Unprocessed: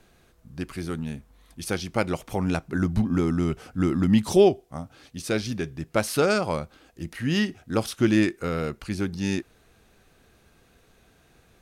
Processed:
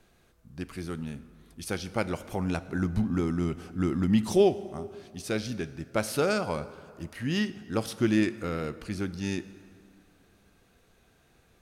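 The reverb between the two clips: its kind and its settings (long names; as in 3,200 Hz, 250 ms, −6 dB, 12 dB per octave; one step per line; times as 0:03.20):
dense smooth reverb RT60 2.3 s, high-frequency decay 0.6×, DRR 13.5 dB
level −4.5 dB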